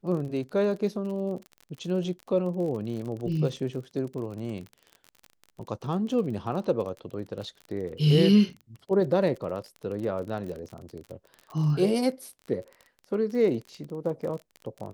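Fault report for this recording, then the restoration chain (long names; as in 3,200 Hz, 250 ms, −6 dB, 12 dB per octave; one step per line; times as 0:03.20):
surface crackle 38 per second −35 dBFS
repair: click removal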